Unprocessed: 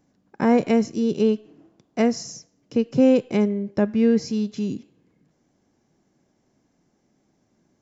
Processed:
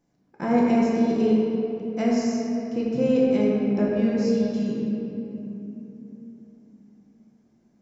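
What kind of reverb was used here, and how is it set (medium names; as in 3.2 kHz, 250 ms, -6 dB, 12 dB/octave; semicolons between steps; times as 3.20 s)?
simulated room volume 180 m³, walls hard, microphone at 0.8 m; trim -8 dB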